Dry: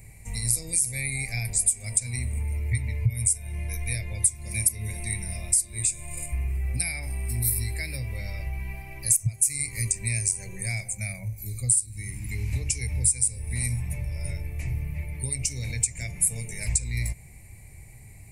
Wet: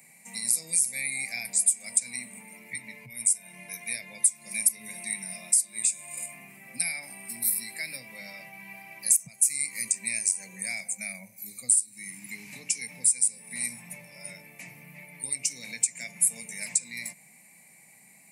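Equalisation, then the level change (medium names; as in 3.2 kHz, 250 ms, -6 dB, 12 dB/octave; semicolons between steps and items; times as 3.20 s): steep high-pass 180 Hz 48 dB/octave; peaking EQ 370 Hz -13 dB 0.8 oct; 0.0 dB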